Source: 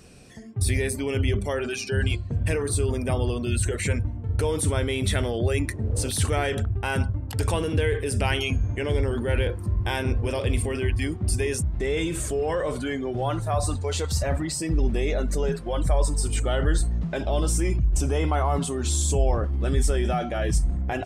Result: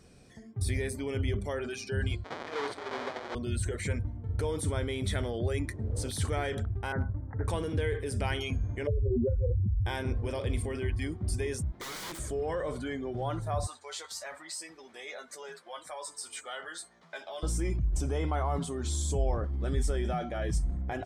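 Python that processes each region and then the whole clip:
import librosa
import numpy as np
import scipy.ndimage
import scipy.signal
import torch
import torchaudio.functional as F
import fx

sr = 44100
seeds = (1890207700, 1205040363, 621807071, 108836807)

y = fx.chain(x, sr, fx.halfwave_hold(),
    fx.over_compress(threshold_db=-22.0, ratio=-1.0),
    fx.bandpass_edges(low_hz=490.0, high_hz=3900.0), at=(2.24, 3.35))
y = fx.chain(y, sr, fx.steep_lowpass(hz=2000.0, slope=96),
    fx.clip_hard(threshold_db=-14.5), at=(6.92, 7.48))
y = fx.chain(y, sr, fx.spec_expand(power=3.0),
    fx.lowpass(hz=1300.0, slope=12),
    fx.env_flatten(amount_pct=100), at=(8.87, 9.86))
y = fx.chain(y, sr, fx.highpass(hz=270.0, slope=12),
    fx.overflow_wrap(gain_db=27.0), at=(11.72, 12.19))
y = fx.chain(y, sr, fx.highpass(hz=950.0, slope=12),
    fx.doubler(ms=12.0, db=-6), at=(13.67, 17.43))
y = fx.high_shelf(y, sr, hz=8500.0, db=-6.5)
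y = fx.notch(y, sr, hz=2700.0, q=6.9)
y = y * 10.0 ** (-7.0 / 20.0)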